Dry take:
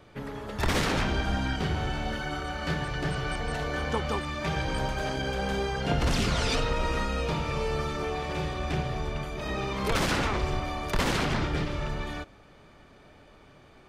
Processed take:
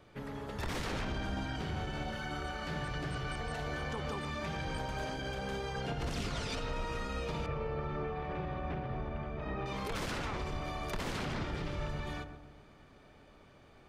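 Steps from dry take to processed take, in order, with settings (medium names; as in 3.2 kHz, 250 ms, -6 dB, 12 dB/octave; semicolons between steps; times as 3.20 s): 7.46–9.66 s: low-pass 1.9 kHz 12 dB/octave; peak limiter -23.5 dBFS, peak gain reduction 8.5 dB; filtered feedback delay 130 ms, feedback 55%, low-pass 960 Hz, level -7 dB; trim -5.5 dB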